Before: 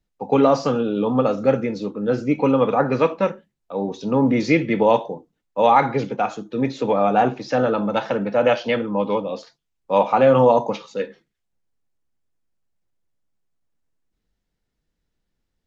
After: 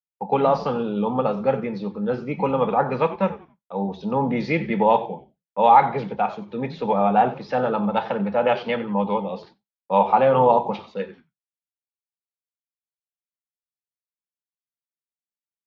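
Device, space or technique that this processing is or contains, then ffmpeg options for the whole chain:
frequency-shifting delay pedal into a guitar cabinet: -filter_complex "[0:a]asplit=4[link_01][link_02][link_03][link_04];[link_02]adelay=91,afreqshift=-110,volume=-16dB[link_05];[link_03]adelay=182,afreqshift=-220,volume=-25.4dB[link_06];[link_04]adelay=273,afreqshift=-330,volume=-34.7dB[link_07];[link_01][link_05][link_06][link_07]amix=inputs=4:normalize=0,highpass=95,equalizer=frequency=100:width_type=q:width=4:gain=-5,equalizer=frequency=190:width_type=q:width=4:gain=8,equalizer=frequency=290:width_type=q:width=4:gain=-9,equalizer=frequency=860:width_type=q:width=4:gain=8,lowpass=frequency=4400:width=0.5412,lowpass=frequency=4400:width=1.3066,agate=range=-33dB:threshold=-40dB:ratio=3:detection=peak,volume=-3.5dB"

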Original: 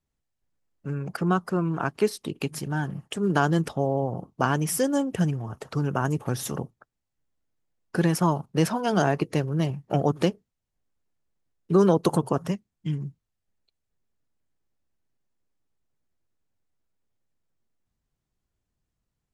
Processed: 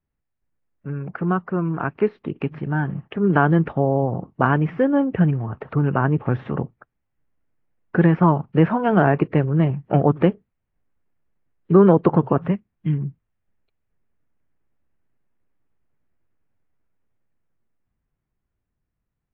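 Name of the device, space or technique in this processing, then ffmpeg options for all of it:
action camera in a waterproof case: -filter_complex "[0:a]acrossover=split=3100[link_01][link_02];[link_02]acompressor=threshold=-53dB:ratio=4:attack=1:release=60[link_03];[link_01][link_03]amix=inputs=2:normalize=0,lowpass=frequency=2400:width=0.5412,lowpass=frequency=2400:width=1.3066,equalizer=frequency=660:width=0.78:gain=-2,dynaudnorm=framelen=210:gausssize=21:maxgain=6dB,volume=2dB" -ar 24000 -c:a aac -b:a 48k

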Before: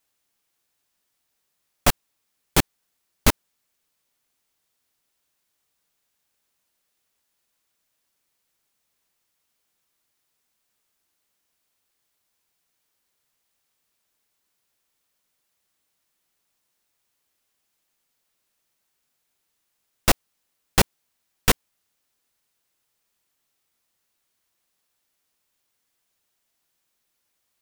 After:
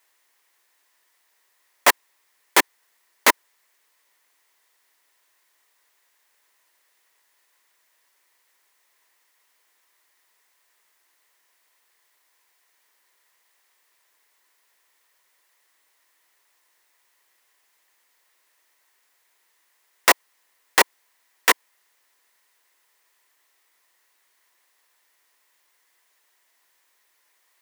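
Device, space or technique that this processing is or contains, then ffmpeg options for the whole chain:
laptop speaker: -af "highpass=frequency=340:width=0.5412,highpass=frequency=340:width=1.3066,equalizer=frequency=1000:width_type=o:width=0.3:gain=8,equalizer=frequency=1900:width_type=o:width=0.42:gain=10,alimiter=limit=-10dB:level=0:latency=1:release=42,volume=7.5dB"

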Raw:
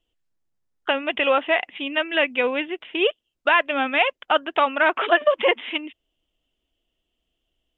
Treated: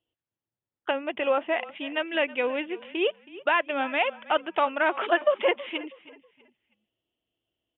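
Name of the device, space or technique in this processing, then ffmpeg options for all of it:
frequency-shifting delay pedal into a guitar cabinet: -filter_complex "[0:a]asplit=4[link_01][link_02][link_03][link_04];[link_02]adelay=322,afreqshift=-31,volume=-18.5dB[link_05];[link_03]adelay=644,afreqshift=-62,volume=-28.7dB[link_06];[link_04]adelay=966,afreqshift=-93,volume=-38.8dB[link_07];[link_01][link_05][link_06][link_07]amix=inputs=4:normalize=0,highpass=97,equalizer=frequency=110:width_type=q:width=4:gain=10,equalizer=frequency=340:width_type=q:width=4:gain=4,equalizer=frequency=560:width_type=q:width=4:gain=3,equalizer=frequency=870:width_type=q:width=4:gain=3,lowpass=frequency=3600:width=0.5412,lowpass=frequency=3600:width=1.3066,asettb=1/sr,asplit=3[link_08][link_09][link_10];[link_08]atrim=end=0.914[link_11];[link_09]atrim=start=0.91:end=1.57,asetpts=PTS-STARTPTS,afade=type=in:duration=0.004:curve=qsin,afade=type=out:start_time=0.656:duration=0.004:curve=qsin,aemphasis=mode=reproduction:type=75kf[link_12];[link_10]atrim=start=1.566[link_13];[link_11][link_12]acrossfade=duration=0.004:curve1=hsin:curve2=qsin[link_14];[link_14][link_13]acrossfade=duration=0.004:curve1=qsin:curve2=hsin,volume=-6.5dB"

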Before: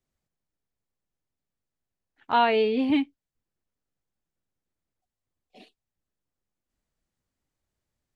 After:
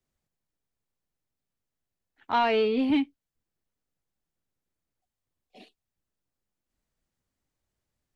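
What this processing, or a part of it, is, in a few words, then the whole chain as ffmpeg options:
one-band saturation: -filter_complex "[0:a]acrossover=split=210|3000[link_01][link_02][link_03];[link_02]asoftclip=type=tanh:threshold=-18dB[link_04];[link_01][link_04][link_03]amix=inputs=3:normalize=0"

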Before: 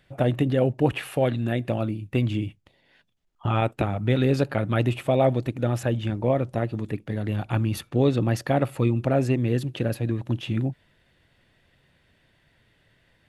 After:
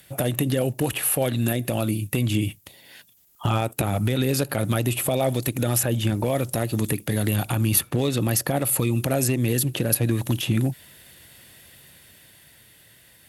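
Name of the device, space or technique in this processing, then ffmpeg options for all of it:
FM broadcast chain: -filter_complex "[0:a]highpass=56,dynaudnorm=framelen=370:gausssize=9:maxgain=4.5dB,acrossover=split=1300|3000[link_01][link_02][link_03];[link_01]acompressor=threshold=-24dB:ratio=4[link_04];[link_02]acompressor=threshold=-45dB:ratio=4[link_05];[link_03]acompressor=threshold=-49dB:ratio=4[link_06];[link_04][link_05][link_06]amix=inputs=3:normalize=0,aemphasis=mode=production:type=50fm,alimiter=limit=-18dB:level=0:latency=1:release=61,asoftclip=type=hard:threshold=-19dB,lowpass=frequency=15000:width=0.5412,lowpass=frequency=15000:width=1.3066,aemphasis=mode=production:type=50fm,volume=6dB"

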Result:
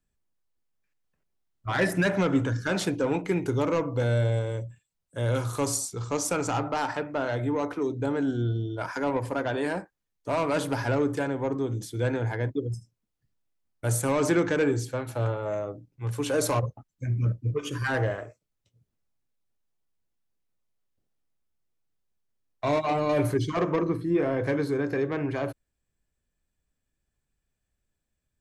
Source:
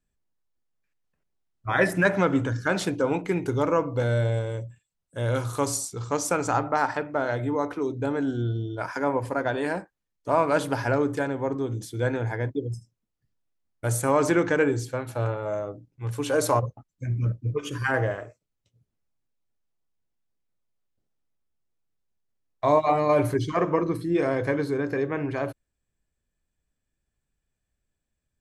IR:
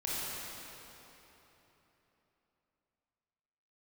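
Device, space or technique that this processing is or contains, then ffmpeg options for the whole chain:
one-band saturation: -filter_complex "[0:a]acrossover=split=400|2400[link_01][link_02][link_03];[link_02]asoftclip=type=tanh:threshold=-25dB[link_04];[link_01][link_04][link_03]amix=inputs=3:normalize=0,asettb=1/sr,asplit=3[link_05][link_06][link_07];[link_05]atrim=end=23.824[link_08];[link_06]atrim=start=23.82:end=24.46,asetpts=PTS-STARTPTS,afade=type=in:duration=0.004:curve=qsin,afade=type=out:start_time=0.636:duration=0.004:curve=qsin,acrossover=split=2700[link_09][link_10];[link_10]acompressor=threshold=-59dB:ratio=4:attack=1:release=60[link_11];[link_09][link_11]amix=inputs=2:normalize=0[link_12];[link_07]atrim=start=24.456[link_13];[link_08][link_12]acrossfade=duration=0.004:curve1=hsin:curve2=qsin[link_14];[link_14][link_13]acrossfade=duration=0.004:curve1=qsin:curve2=hsin"

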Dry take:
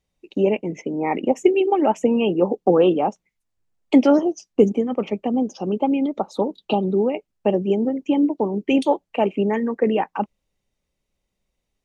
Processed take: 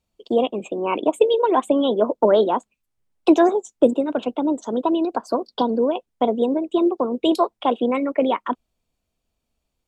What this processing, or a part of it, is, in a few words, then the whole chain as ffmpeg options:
nightcore: -af "asetrate=52920,aresample=44100"

